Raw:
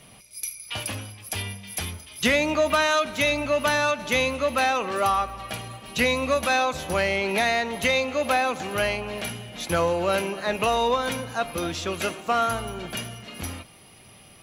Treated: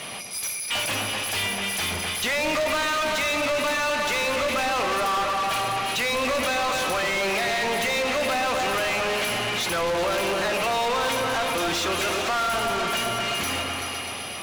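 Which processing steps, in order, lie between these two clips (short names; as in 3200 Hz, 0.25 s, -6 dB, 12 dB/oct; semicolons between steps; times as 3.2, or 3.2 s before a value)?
limiter -19.5 dBFS, peak gain reduction 10.5 dB; repeats that get brighter 0.127 s, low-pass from 750 Hz, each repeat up 2 oct, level -6 dB; overdrive pedal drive 30 dB, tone 5800 Hz, clips at -14 dBFS; gain -4 dB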